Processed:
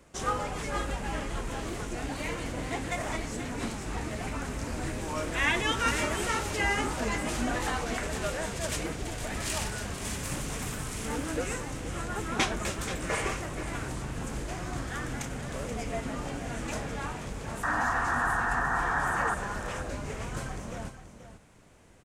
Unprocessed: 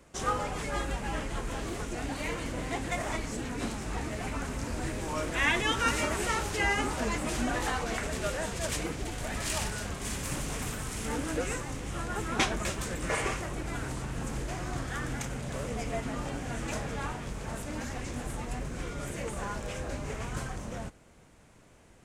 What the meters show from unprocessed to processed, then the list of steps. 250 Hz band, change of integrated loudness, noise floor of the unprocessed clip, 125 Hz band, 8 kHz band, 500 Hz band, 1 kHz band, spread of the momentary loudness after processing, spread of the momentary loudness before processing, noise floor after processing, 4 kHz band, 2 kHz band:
+0.5 dB, +1.5 dB, -57 dBFS, 0.0 dB, +0.5 dB, +0.5 dB, +3.0 dB, 9 LU, 9 LU, -48 dBFS, +0.5 dB, +2.5 dB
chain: painted sound noise, 17.63–19.35, 660–1900 Hz -29 dBFS; on a send: echo 0.481 s -11.5 dB

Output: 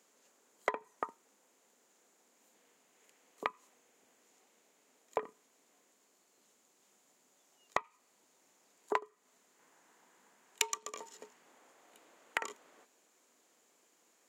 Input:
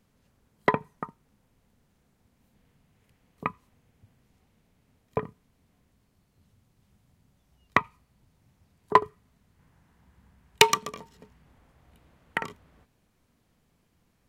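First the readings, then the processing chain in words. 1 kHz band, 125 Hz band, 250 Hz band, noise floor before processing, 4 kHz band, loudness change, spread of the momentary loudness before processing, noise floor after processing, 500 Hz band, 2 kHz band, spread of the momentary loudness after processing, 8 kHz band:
-12.5 dB, -26.5 dB, -16.5 dB, -70 dBFS, -14.5 dB, -12.0 dB, 21 LU, -72 dBFS, -11.0 dB, -11.5 dB, 19 LU, -6.5 dB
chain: HPF 330 Hz 24 dB/oct; bell 7000 Hz +13.5 dB 0.4 oct; compressor 12:1, threshold -32 dBFS, peak gain reduction 24 dB; gain +2 dB

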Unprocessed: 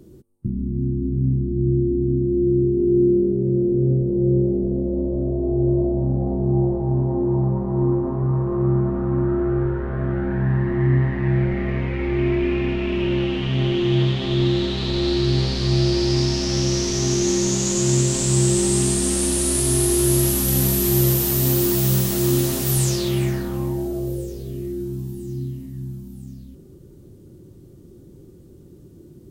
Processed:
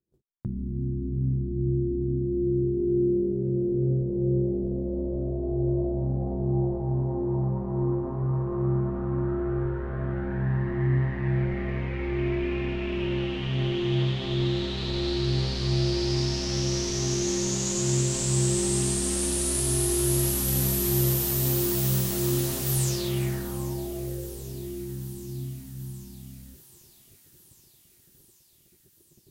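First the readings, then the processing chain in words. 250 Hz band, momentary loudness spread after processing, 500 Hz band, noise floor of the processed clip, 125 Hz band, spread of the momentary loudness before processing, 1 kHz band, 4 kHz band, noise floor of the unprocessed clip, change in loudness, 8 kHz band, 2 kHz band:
-7.5 dB, 11 LU, -7.0 dB, -59 dBFS, -6.0 dB, 9 LU, -5.5 dB, -5.5 dB, -46 dBFS, -6.5 dB, -5.5 dB, -5.5 dB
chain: bell 270 Hz -4 dB 0.74 oct; gate -43 dBFS, range -35 dB; thinning echo 0.783 s, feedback 74%, high-pass 620 Hz, level -17 dB; gain -5.5 dB

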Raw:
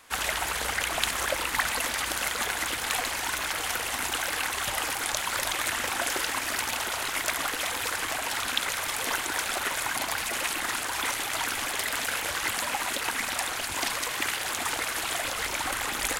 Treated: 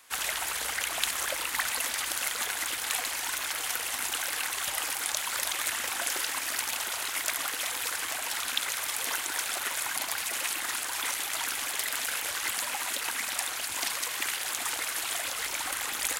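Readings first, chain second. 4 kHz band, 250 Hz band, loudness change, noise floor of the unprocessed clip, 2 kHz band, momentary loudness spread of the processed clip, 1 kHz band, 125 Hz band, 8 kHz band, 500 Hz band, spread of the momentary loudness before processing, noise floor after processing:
-2.0 dB, -9.0 dB, -1.5 dB, -33 dBFS, -3.5 dB, 2 LU, -5.5 dB, -12.0 dB, +0.5 dB, -7.0 dB, 2 LU, -35 dBFS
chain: tilt +2 dB/oct; gain -5.5 dB

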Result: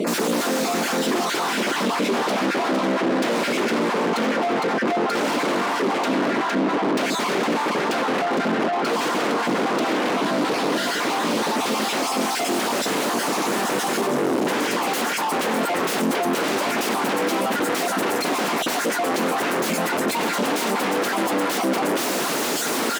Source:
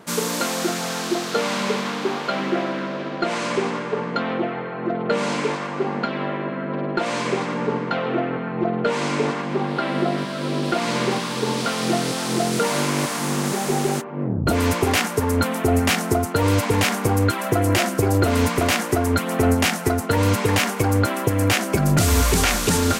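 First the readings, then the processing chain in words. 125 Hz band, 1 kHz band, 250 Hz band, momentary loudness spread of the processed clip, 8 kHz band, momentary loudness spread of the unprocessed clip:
-14.0 dB, +2.5 dB, -0.5 dB, 1 LU, -1.5 dB, 7 LU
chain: random spectral dropouts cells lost 35%; sine folder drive 18 dB, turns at -8 dBFS; on a send: echo 0.459 s -6.5 dB; on the sum: soft clip -18 dBFS, distortion -8 dB; HPF 250 Hz 24 dB/oct; tilt -2 dB/oct; in parallel at -2.5 dB: negative-ratio compressor -25 dBFS; on the sum: low shelf 400 Hz +6.5 dB; gain -7 dB

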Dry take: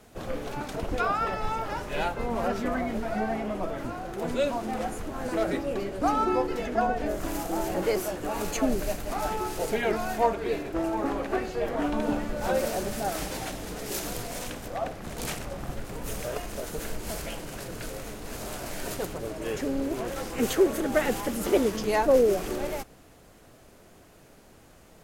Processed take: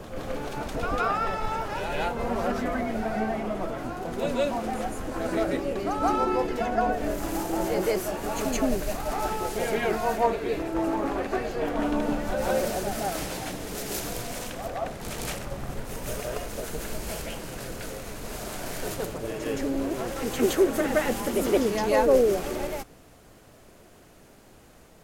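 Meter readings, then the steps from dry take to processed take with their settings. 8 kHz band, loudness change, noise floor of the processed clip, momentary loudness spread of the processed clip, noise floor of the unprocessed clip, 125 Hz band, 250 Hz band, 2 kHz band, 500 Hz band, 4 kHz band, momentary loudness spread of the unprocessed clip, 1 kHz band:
+1.0 dB, +1.0 dB, -53 dBFS, 10 LU, -54 dBFS, +1.0 dB, +1.0 dB, +1.0 dB, +1.0 dB, +1.0 dB, 11 LU, +1.0 dB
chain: reverse echo 0.168 s -5 dB

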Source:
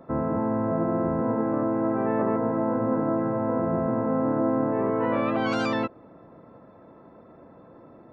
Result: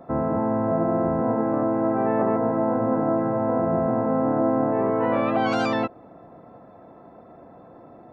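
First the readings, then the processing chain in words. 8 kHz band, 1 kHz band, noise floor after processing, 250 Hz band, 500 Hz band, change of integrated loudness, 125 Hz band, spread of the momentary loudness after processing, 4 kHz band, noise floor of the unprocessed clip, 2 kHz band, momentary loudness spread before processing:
n/a, +4.0 dB, -48 dBFS, +1.5 dB, +3.5 dB, +2.5 dB, +1.5 dB, 2 LU, +1.5 dB, -51 dBFS, +1.5 dB, 2 LU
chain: bell 730 Hz +11 dB 0.21 oct; gain +1.5 dB

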